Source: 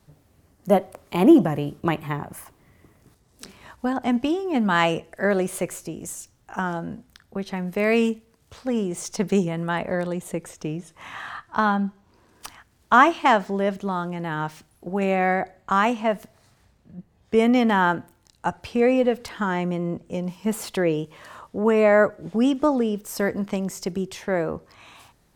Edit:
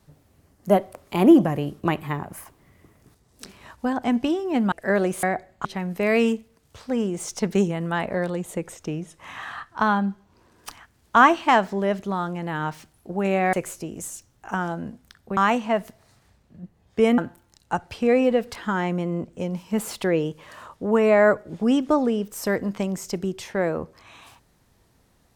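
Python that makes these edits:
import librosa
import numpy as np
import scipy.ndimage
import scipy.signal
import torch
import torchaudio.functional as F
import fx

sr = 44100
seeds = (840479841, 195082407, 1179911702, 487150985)

y = fx.edit(x, sr, fx.cut(start_s=4.72, length_s=0.35),
    fx.swap(start_s=5.58, length_s=1.84, other_s=15.3, other_length_s=0.42),
    fx.cut(start_s=17.53, length_s=0.38), tone=tone)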